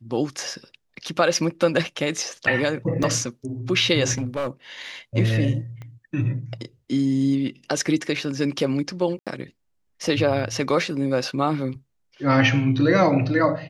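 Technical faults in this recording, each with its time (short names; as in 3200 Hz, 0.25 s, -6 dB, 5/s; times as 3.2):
3.03 gap 4.8 ms
4.18–4.48 clipped -21.5 dBFS
5.82 pop -26 dBFS
9.19–9.27 gap 77 ms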